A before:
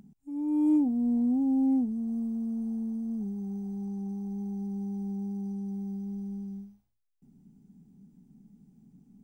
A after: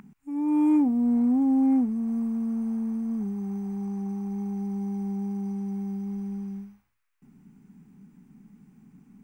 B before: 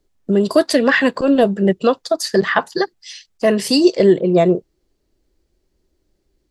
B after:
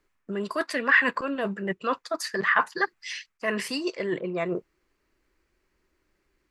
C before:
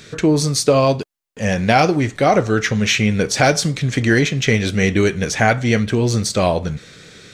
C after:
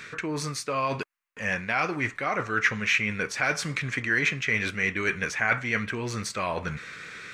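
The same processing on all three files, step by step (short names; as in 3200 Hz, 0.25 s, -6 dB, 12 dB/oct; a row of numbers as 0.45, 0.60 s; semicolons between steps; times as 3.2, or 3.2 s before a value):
low shelf 180 Hz -5 dB; reverse; compressor 6:1, threshold -23 dBFS; reverse; band shelf 1600 Hz +12 dB; match loudness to -27 LUFS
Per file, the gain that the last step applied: +6.0, -4.5, -6.0 dB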